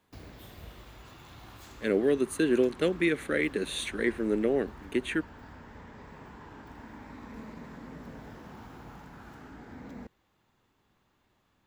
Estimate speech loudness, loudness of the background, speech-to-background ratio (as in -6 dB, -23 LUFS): -29.0 LUFS, -48.0 LUFS, 19.0 dB